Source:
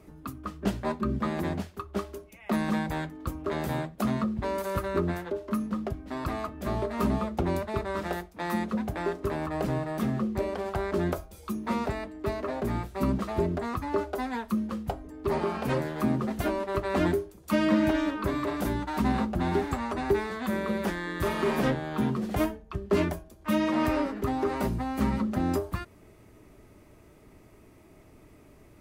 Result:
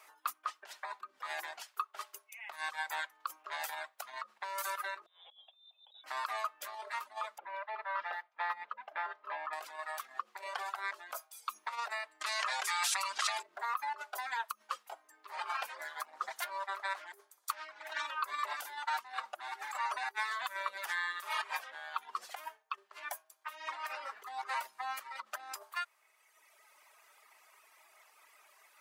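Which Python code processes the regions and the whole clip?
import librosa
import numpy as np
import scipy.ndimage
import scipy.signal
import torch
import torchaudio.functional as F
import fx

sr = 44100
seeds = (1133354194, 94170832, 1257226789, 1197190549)

y = fx.chain(x, sr, fx.freq_invert(carrier_hz=3800),
    fx.over_compress(threshold_db=-39.0, ratio=-1.0),
    fx.curve_eq(hz=(220.0, 590.0, 2100.0), db=(0, 14, -27)), at=(5.06, 6.04))
y = fx.chain(y, sr, fx.air_absorb(metres=370.0),
    fx.notch_comb(f0_hz=370.0), at=(7.38, 9.53))
y = fx.chain(y, sr, fx.weighting(curve='ITU-R 468'),
    fx.env_flatten(amount_pct=100), at=(12.21, 13.43))
y = fx.chain(y, sr, fx.highpass(hz=110.0, slope=12),
    fx.peak_eq(hz=2700.0, db=-6.5, octaves=0.26),
    fx.doppler_dist(depth_ms=0.29), at=(15.75, 18.06))
y = fx.dereverb_blind(y, sr, rt60_s=1.6)
y = fx.over_compress(y, sr, threshold_db=-35.0, ratio=-1.0)
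y = scipy.signal.sosfilt(scipy.signal.butter(4, 900.0, 'highpass', fs=sr, output='sos'), y)
y = y * 10.0 ** (1.5 / 20.0)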